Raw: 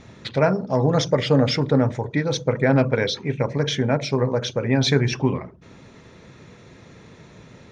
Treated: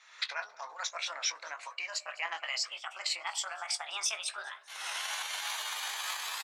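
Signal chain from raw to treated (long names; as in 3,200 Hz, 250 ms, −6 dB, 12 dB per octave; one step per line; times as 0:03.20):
pitch glide at a constant tempo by +11 semitones starting unshifted
camcorder AGC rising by 47 dB per second
high-pass filter 1,100 Hz 24 dB per octave
tempo change 1.2×
double-tracking delay 18 ms −11 dB
repeating echo 203 ms, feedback 47%, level −23 dB
wow of a warped record 33 1/3 rpm, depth 100 cents
level −7 dB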